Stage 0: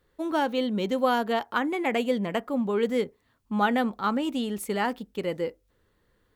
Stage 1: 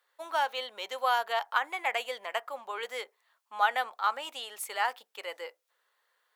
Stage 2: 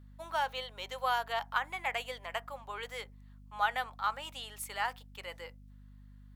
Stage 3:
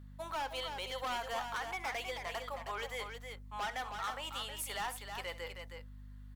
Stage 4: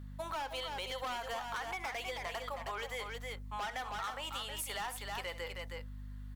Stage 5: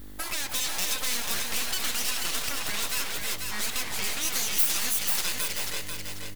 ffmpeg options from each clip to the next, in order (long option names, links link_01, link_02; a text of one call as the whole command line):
ffmpeg -i in.wav -af "highpass=frequency=700:width=0.5412,highpass=frequency=700:width=1.3066" out.wav
ffmpeg -i in.wav -af "asubboost=boost=5.5:cutoff=170,aeval=exprs='val(0)+0.00355*(sin(2*PI*50*n/s)+sin(2*PI*2*50*n/s)/2+sin(2*PI*3*50*n/s)/3+sin(2*PI*4*50*n/s)/4+sin(2*PI*5*50*n/s)/5)':channel_layout=same,volume=-3.5dB" out.wav
ffmpeg -i in.wav -af "acompressor=threshold=-38dB:ratio=1.5,asoftclip=type=hard:threshold=-37dB,aecho=1:1:67|317:0.158|0.473,volume=2.5dB" out.wav
ffmpeg -i in.wav -af "acompressor=threshold=-42dB:ratio=6,volume=5dB" out.wav
ffmpeg -i in.wav -filter_complex "[0:a]aeval=exprs='abs(val(0))':channel_layout=same,crystalizer=i=5:c=0,asplit=2[link_01][link_02];[link_02]aecho=0:1:490|980|1470|1960:0.562|0.186|0.0612|0.0202[link_03];[link_01][link_03]amix=inputs=2:normalize=0,volume=5.5dB" out.wav